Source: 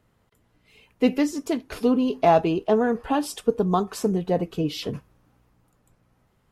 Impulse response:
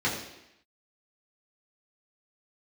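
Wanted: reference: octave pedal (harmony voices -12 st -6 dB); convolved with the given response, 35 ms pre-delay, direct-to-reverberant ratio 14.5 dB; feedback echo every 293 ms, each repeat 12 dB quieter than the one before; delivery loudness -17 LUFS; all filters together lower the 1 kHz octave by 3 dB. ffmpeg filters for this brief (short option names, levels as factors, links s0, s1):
-filter_complex "[0:a]equalizer=f=1000:t=o:g=-4.5,aecho=1:1:293|586|879:0.251|0.0628|0.0157,asplit=2[s0][s1];[1:a]atrim=start_sample=2205,adelay=35[s2];[s1][s2]afir=irnorm=-1:irlink=0,volume=0.0501[s3];[s0][s3]amix=inputs=2:normalize=0,asplit=2[s4][s5];[s5]asetrate=22050,aresample=44100,atempo=2,volume=0.501[s6];[s4][s6]amix=inputs=2:normalize=0,volume=2"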